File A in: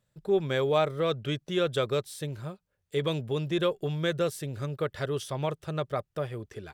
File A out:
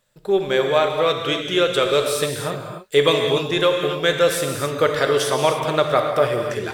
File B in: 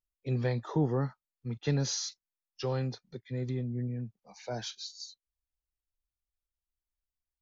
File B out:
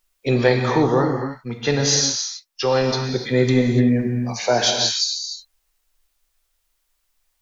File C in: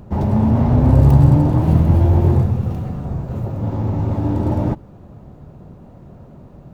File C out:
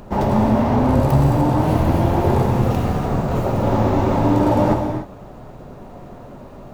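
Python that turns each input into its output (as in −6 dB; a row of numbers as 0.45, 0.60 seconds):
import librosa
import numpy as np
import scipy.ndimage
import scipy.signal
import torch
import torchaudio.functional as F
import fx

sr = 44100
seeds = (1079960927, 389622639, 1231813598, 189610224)

y = fx.peak_eq(x, sr, hz=100.0, db=-14.5, octaves=2.8)
y = fx.rider(y, sr, range_db=5, speed_s=0.5)
y = fx.rev_gated(y, sr, seeds[0], gate_ms=320, shape='flat', drr_db=2.5)
y = librosa.util.normalize(y) * 10.0 ** (-3 / 20.0)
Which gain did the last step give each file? +12.5, +19.5, +7.5 decibels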